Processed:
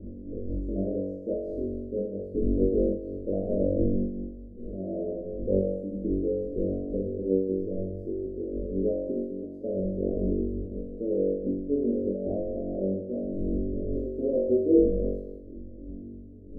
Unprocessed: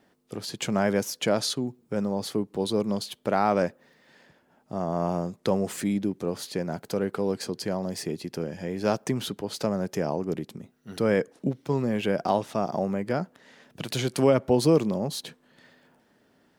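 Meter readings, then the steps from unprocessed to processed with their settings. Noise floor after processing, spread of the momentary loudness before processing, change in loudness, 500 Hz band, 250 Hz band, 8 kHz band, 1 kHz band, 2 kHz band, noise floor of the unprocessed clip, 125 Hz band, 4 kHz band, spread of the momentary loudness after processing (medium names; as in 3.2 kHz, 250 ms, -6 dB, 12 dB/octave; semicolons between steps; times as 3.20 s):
-42 dBFS, 10 LU, -1.5 dB, -0.5 dB, 0.0 dB, under -40 dB, under -20 dB, under -40 dB, -65 dBFS, -3.5 dB, under -40 dB, 12 LU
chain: wind noise 220 Hz -33 dBFS; elliptic low-pass 600 Hz, stop band 50 dB; static phaser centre 350 Hz, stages 4; flutter echo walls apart 3.6 m, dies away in 1.2 s; random flutter of the level, depth 60%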